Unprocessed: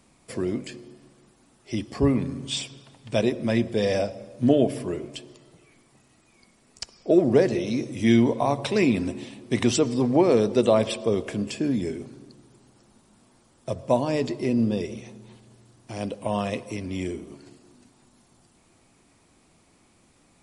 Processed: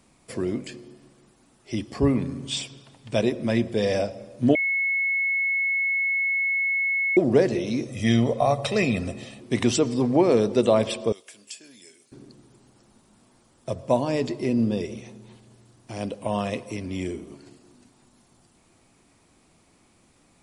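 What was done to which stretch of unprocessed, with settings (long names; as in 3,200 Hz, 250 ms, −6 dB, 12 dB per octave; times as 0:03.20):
0:04.55–0:07.17: beep over 2,190 Hz −21 dBFS
0:07.88–0:09.41: comb filter 1.6 ms
0:11.12–0:12.12: first difference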